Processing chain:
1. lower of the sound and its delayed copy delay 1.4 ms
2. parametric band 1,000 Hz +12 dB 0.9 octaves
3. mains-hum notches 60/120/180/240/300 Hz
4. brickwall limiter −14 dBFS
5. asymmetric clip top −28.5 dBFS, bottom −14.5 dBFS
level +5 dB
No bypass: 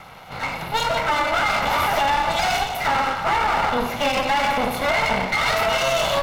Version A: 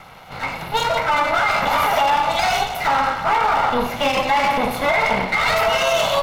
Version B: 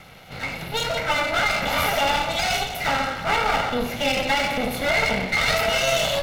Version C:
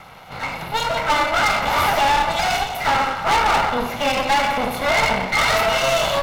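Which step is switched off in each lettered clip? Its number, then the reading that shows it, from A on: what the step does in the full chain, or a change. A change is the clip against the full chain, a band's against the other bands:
5, distortion level −9 dB
2, 1 kHz band −5.0 dB
4, average gain reduction 2.0 dB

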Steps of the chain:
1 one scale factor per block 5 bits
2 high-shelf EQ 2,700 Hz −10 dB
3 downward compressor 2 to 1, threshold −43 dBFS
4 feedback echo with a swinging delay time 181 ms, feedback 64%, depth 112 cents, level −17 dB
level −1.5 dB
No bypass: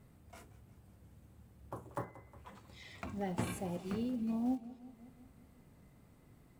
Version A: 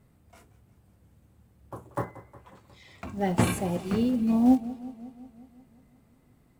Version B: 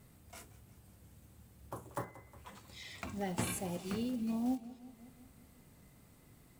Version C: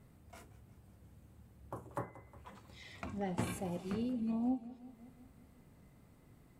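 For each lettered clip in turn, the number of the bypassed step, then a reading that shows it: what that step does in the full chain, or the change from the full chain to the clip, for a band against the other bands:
3, average gain reduction 8.5 dB
2, 8 kHz band +8.5 dB
1, distortion level −25 dB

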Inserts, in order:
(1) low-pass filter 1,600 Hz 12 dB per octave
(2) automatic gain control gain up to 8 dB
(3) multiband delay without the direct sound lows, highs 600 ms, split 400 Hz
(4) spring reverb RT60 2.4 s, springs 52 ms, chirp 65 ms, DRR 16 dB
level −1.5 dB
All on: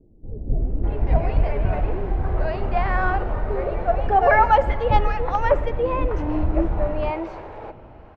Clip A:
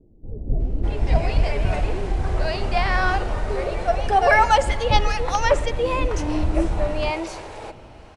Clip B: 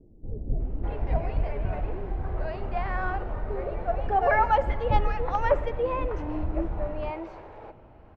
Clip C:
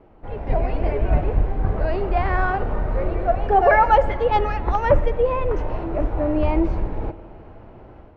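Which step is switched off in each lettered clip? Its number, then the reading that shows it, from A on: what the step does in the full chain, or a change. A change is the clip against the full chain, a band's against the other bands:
1, 2 kHz band +3.5 dB
2, change in crest factor +1.5 dB
3, echo-to-direct ratio 17.5 dB to −16.0 dB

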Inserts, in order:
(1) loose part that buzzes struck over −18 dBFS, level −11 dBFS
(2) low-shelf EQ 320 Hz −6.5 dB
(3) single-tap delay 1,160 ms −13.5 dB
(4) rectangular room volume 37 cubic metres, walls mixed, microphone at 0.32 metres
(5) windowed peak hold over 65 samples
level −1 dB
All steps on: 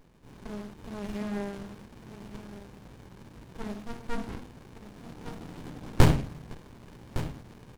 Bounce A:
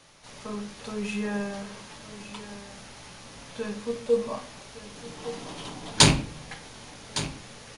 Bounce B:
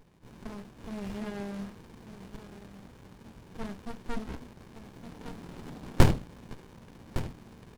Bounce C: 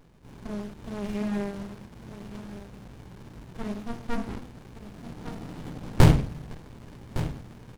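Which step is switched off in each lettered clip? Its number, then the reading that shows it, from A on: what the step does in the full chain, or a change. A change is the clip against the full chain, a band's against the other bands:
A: 5, 8 kHz band +12.0 dB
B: 4, change in momentary loudness spread −2 LU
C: 2, 125 Hz band +2.5 dB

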